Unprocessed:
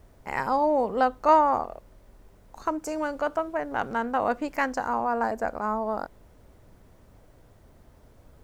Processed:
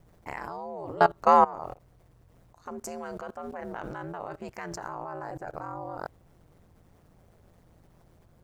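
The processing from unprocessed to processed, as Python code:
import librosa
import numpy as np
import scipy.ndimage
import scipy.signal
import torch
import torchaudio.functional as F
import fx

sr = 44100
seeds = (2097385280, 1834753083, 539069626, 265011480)

y = fx.level_steps(x, sr, step_db=21)
y = y * np.sin(2.0 * np.pi * 85.0 * np.arange(len(y)) / sr)
y = F.gain(torch.from_numpy(y), 7.5).numpy()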